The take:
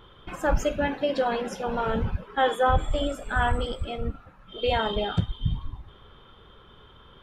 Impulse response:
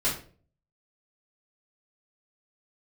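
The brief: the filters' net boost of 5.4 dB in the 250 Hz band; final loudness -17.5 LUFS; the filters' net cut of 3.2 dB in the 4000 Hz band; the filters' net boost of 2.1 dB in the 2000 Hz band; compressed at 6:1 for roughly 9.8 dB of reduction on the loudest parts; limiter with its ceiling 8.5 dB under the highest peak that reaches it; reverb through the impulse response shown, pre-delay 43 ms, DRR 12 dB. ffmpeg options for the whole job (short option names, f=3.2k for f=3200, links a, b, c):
-filter_complex "[0:a]equalizer=f=250:t=o:g=6.5,equalizer=f=2k:t=o:g=4,equalizer=f=4k:t=o:g=-6.5,acompressor=threshold=-27dB:ratio=6,alimiter=limit=-23.5dB:level=0:latency=1,asplit=2[a][b];[1:a]atrim=start_sample=2205,adelay=43[c];[b][c]afir=irnorm=-1:irlink=0,volume=-21.5dB[d];[a][d]amix=inputs=2:normalize=0,volume=17dB"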